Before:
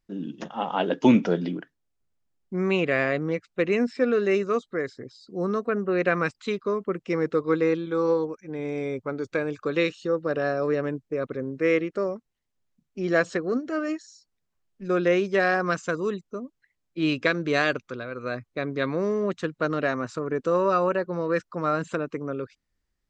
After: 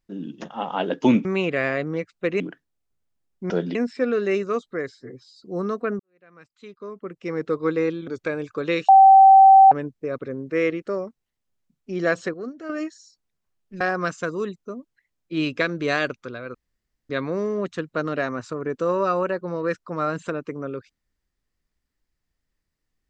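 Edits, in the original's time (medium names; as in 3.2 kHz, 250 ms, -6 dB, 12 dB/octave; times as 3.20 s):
1.25–1.50 s: swap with 2.60–3.75 s
4.89–5.20 s: stretch 1.5×
5.84–7.39 s: fade in quadratic
7.92–9.16 s: delete
9.97–10.80 s: bleep 774 Hz -7 dBFS
13.42–13.78 s: gain -7 dB
14.89–15.46 s: delete
18.20–18.75 s: room tone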